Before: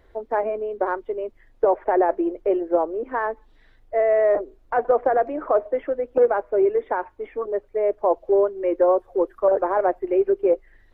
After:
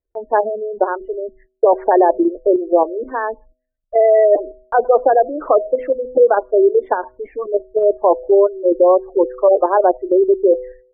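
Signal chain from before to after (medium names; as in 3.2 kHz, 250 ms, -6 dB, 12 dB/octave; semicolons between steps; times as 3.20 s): spectral gate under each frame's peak -20 dB strong; gate -47 dBFS, range -33 dB; de-hum 126.3 Hz, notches 5; in parallel at +1.5 dB: level held to a coarse grid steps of 22 dB; on the sum: tape noise reduction on one side only decoder only; trim +2.5 dB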